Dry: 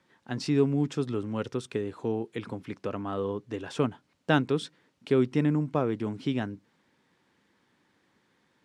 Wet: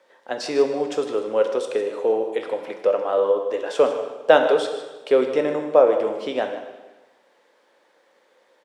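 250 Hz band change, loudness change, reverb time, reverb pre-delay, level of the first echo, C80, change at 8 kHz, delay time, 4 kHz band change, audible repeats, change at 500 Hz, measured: −2.5 dB, +8.5 dB, 1.2 s, 5 ms, −12.5 dB, 7.5 dB, can't be measured, 154 ms, +6.5 dB, 1, +12.5 dB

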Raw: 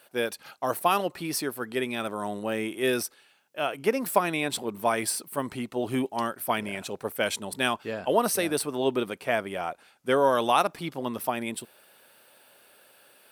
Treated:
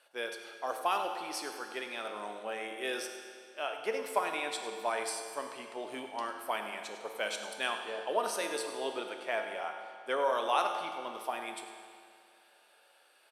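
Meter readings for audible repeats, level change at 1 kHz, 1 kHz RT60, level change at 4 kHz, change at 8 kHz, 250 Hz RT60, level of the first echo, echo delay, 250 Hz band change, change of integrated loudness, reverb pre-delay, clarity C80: 1, −6.0 dB, 2.2 s, −5.5 dB, −9.0 dB, 2.2 s, −13.5 dB, 101 ms, −15.5 dB, −7.5 dB, 9 ms, 6.0 dB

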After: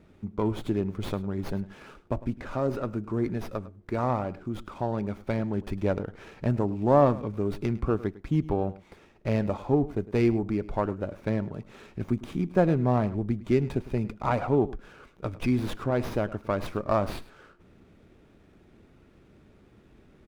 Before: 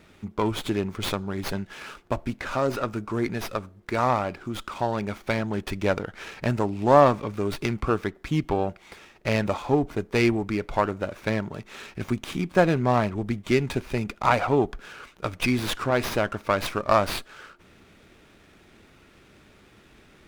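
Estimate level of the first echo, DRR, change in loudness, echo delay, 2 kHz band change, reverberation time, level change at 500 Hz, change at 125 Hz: −18.0 dB, no reverb audible, −3.0 dB, 104 ms, −10.5 dB, no reverb audible, −3.0 dB, +0.5 dB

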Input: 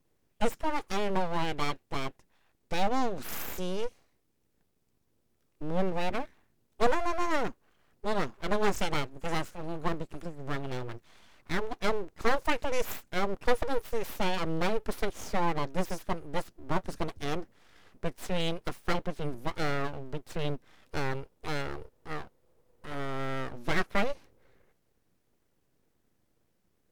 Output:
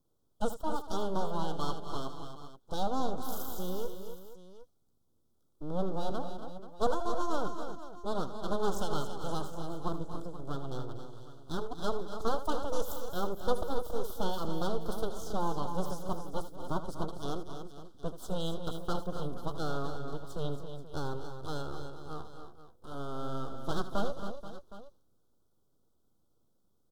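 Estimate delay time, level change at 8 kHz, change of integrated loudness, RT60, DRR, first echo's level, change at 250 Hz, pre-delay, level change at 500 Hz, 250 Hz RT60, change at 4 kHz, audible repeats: 78 ms, −3.0 dB, −4.0 dB, no reverb audible, no reverb audible, −13.0 dB, −2.5 dB, no reverb audible, −3.0 dB, no reverb audible, −5.0 dB, 5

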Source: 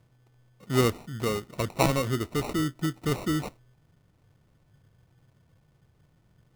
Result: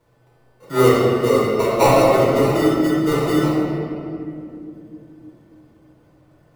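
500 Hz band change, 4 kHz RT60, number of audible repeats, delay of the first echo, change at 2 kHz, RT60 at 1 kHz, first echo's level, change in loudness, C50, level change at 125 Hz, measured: +15.0 dB, 1.5 s, no echo audible, no echo audible, +9.0 dB, 2.2 s, no echo audible, +11.0 dB, −3.0 dB, +6.5 dB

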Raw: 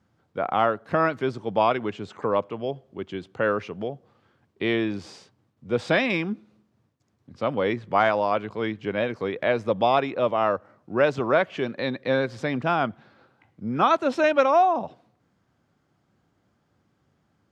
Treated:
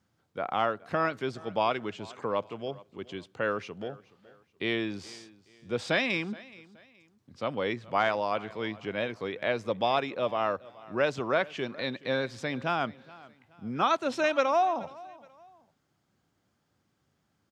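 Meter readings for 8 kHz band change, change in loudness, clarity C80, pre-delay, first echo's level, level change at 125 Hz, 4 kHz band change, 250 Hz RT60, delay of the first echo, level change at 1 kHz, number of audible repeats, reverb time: can't be measured, −6.0 dB, no reverb audible, no reverb audible, −21.0 dB, −7.0 dB, −1.0 dB, no reverb audible, 423 ms, −6.0 dB, 2, no reverb audible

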